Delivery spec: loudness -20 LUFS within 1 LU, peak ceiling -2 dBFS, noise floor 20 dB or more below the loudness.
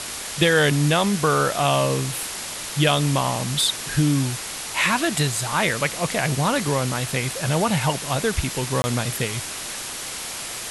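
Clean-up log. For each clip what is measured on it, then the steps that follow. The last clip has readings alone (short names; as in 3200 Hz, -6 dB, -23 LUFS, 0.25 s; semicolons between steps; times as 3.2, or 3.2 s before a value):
dropouts 1; longest dropout 20 ms; noise floor -32 dBFS; noise floor target -42 dBFS; loudness -22.0 LUFS; peak -6.0 dBFS; loudness target -20.0 LUFS
-> interpolate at 8.82, 20 ms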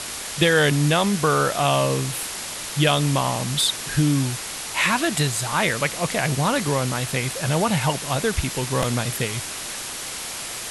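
dropouts 0; noise floor -32 dBFS; noise floor target -42 dBFS
-> denoiser 10 dB, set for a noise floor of -32 dBFS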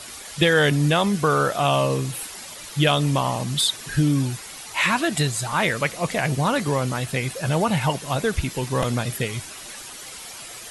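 noise floor -39 dBFS; noise floor target -42 dBFS
-> denoiser 6 dB, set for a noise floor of -39 dBFS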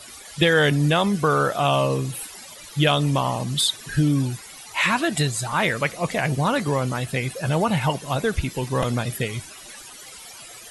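noise floor -42 dBFS; noise floor target -43 dBFS
-> denoiser 6 dB, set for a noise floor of -42 dBFS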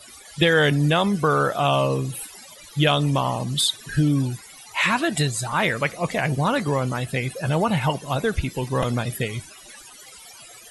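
noise floor -45 dBFS; loudness -22.5 LUFS; peak -6.0 dBFS; loudness target -20.0 LUFS
-> gain +2.5 dB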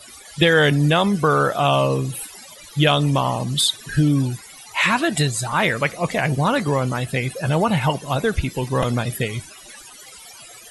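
loudness -20.0 LUFS; peak -3.5 dBFS; noise floor -42 dBFS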